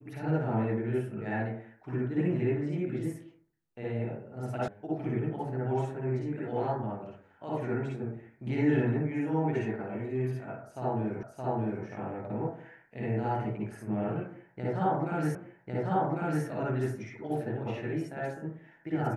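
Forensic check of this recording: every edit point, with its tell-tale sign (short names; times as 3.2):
4.68 sound cut off
11.23 repeat of the last 0.62 s
15.35 repeat of the last 1.1 s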